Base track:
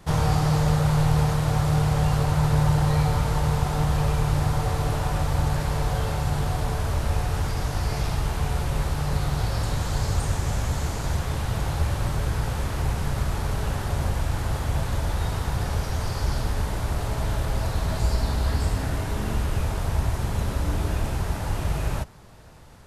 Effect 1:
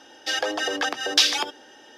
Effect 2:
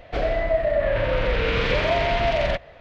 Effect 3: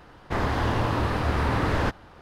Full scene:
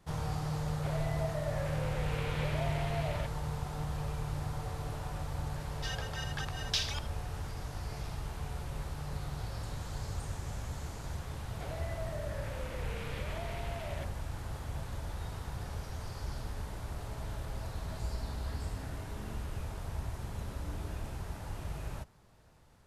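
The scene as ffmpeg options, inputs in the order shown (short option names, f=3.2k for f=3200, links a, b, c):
-filter_complex "[2:a]asplit=2[a][b];[0:a]volume=-14dB[c];[1:a]highpass=890[d];[b]acompressor=threshold=-24dB:ratio=6:attack=3.2:release=140:knee=1:detection=peak[e];[a]atrim=end=2.8,asetpts=PTS-STARTPTS,volume=-17dB,afade=t=in:d=0.004:c=hsin,afade=t=out:st=2.796:d=0.004:c=hsin,adelay=700[f];[d]atrim=end=1.97,asetpts=PTS-STARTPTS,volume=-14.5dB,afade=t=in:d=0.004:c=hsin,afade=t=out:st=1.966:d=0.004:c=hsin,adelay=5560[g];[e]atrim=end=2.8,asetpts=PTS-STARTPTS,volume=-14.5dB,afade=t=in:d=0.004:c=hsin,afade=t=out:st=2.796:d=0.004:c=hsin,adelay=11480[h];[c][f][g][h]amix=inputs=4:normalize=0"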